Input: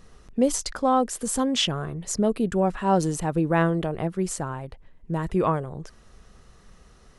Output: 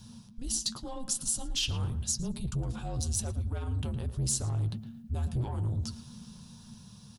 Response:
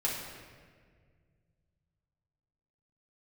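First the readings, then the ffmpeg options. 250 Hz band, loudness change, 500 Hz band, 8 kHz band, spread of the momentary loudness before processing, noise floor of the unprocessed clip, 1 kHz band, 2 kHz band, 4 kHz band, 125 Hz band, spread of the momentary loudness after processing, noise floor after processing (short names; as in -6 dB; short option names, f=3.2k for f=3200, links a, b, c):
-14.5 dB, -8.0 dB, -20.5 dB, -0.5 dB, 10 LU, -54 dBFS, -20.5 dB, -14.5 dB, -5.0 dB, -1.5 dB, 18 LU, -52 dBFS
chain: -filter_complex "[0:a]areverse,acompressor=threshold=-30dB:ratio=5,areverse,flanger=delay=7:depth=4.4:regen=-44:speed=0.86:shape=sinusoidal,afreqshift=-240,alimiter=level_in=5.5dB:limit=-24dB:level=0:latency=1:release=92,volume=-5.5dB,equalizer=f=125:t=o:w=1:g=12,equalizer=f=250:t=o:w=1:g=-5,equalizer=f=500:t=o:w=1:g=-3,equalizer=f=2k:t=o:w=1:g=-4,equalizer=f=8k:t=o:w=1:g=-9,dynaudnorm=f=410:g=7:m=3dB,asoftclip=type=tanh:threshold=-29.5dB,asplit=2[a][b];[b]adelay=112,lowpass=f=2.5k:p=1,volume=-12dB,asplit=2[c][d];[d]adelay=112,lowpass=f=2.5k:p=1,volume=0.29,asplit=2[e][f];[f]adelay=112,lowpass=f=2.5k:p=1,volume=0.29[g];[c][e][g]amix=inputs=3:normalize=0[h];[a][h]amix=inputs=2:normalize=0,aexciter=amount=6.6:drive=3.7:freq=3.1k,lowshelf=f=470:g=3"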